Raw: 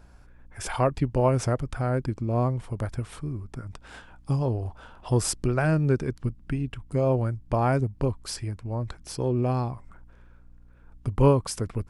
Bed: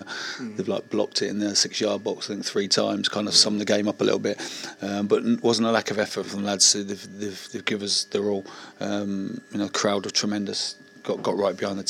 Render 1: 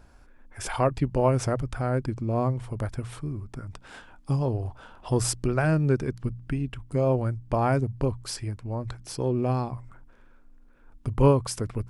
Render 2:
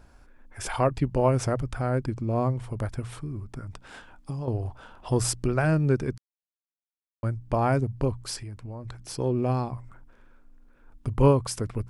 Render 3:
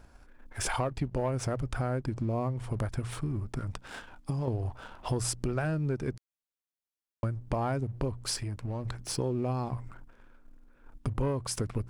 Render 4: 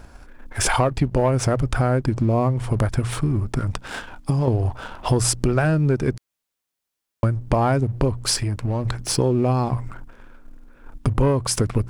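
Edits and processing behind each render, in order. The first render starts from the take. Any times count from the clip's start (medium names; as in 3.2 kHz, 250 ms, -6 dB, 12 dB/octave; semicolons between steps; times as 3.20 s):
de-hum 60 Hz, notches 3
3.19–4.48 s: compression, threshold -29 dBFS; 6.18–7.23 s: mute; 8.37–8.98 s: compression, threshold -34 dBFS
waveshaping leveller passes 1; compression 6:1, threshold -28 dBFS, peak gain reduction 14.5 dB
trim +11.5 dB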